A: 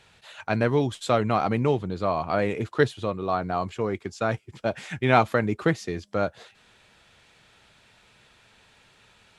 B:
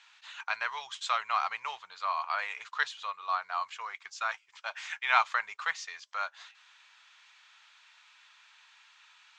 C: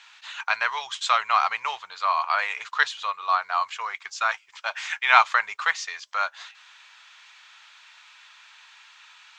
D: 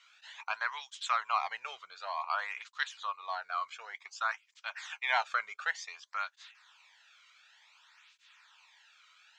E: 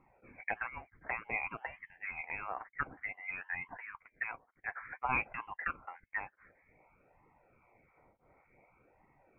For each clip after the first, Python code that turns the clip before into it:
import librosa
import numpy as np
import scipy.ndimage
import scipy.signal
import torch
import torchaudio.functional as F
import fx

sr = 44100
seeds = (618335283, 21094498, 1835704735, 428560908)

y1 = scipy.signal.sosfilt(scipy.signal.ellip(3, 1.0, 50, [1000.0, 6800.0], 'bandpass', fs=sr, output='sos'), x)
y2 = fx.peak_eq(y1, sr, hz=160.0, db=-6.0, octaves=0.42)
y2 = y2 * librosa.db_to_amplitude(8.5)
y3 = fx.flanger_cancel(y2, sr, hz=0.55, depth_ms=1.2)
y3 = y3 * librosa.db_to_amplitude(-8.0)
y4 = fx.env_phaser(y3, sr, low_hz=240.0, high_hz=1400.0, full_db=-31.5)
y4 = fx.freq_invert(y4, sr, carrier_hz=3200)
y4 = y4 * librosa.db_to_amplitude(2.5)